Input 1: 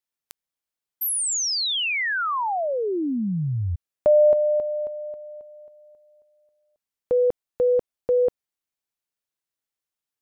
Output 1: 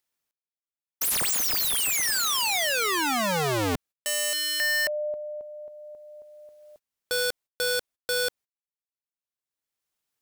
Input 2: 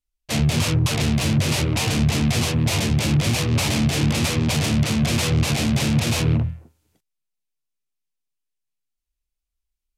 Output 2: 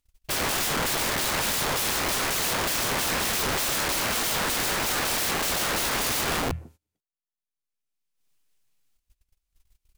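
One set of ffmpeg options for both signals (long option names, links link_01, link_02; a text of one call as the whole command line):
ffmpeg -i in.wav -af "acompressor=mode=upward:threshold=-38dB:ratio=2.5:attack=0.58:release=866:knee=2.83:detection=peak,aeval=exprs='(mod(17.8*val(0)+1,2)-1)/17.8':channel_layout=same,agate=range=-23dB:threshold=-56dB:ratio=16:release=210:detection=peak,volume=3.5dB" out.wav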